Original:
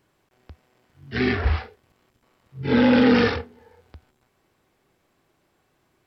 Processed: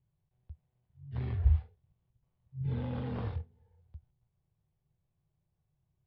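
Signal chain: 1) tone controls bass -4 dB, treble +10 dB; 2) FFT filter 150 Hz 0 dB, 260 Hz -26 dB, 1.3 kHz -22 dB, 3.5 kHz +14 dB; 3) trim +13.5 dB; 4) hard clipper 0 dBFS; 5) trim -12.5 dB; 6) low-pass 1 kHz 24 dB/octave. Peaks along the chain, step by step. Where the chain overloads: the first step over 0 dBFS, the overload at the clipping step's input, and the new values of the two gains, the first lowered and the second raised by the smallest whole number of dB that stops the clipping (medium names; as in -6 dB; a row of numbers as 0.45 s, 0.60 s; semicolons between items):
-7.5 dBFS, -3.5 dBFS, +10.0 dBFS, 0.0 dBFS, -12.5 dBFS, -15.0 dBFS; step 3, 10.0 dB; step 3 +3.5 dB, step 5 -2.5 dB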